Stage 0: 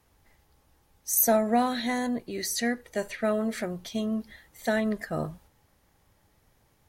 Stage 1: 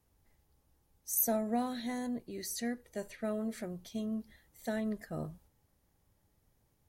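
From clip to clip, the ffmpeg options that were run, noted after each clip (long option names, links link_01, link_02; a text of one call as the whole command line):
ffmpeg -i in.wav -af "equalizer=frequency=1800:width=0.32:gain=-7.5,volume=-6dB" out.wav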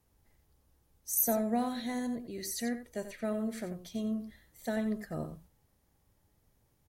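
ffmpeg -i in.wav -af "aecho=1:1:88:0.299,volume=1.5dB" out.wav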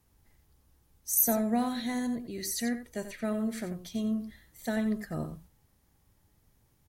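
ffmpeg -i in.wav -af "equalizer=frequency=550:width=1.4:gain=-4.5,volume=4dB" out.wav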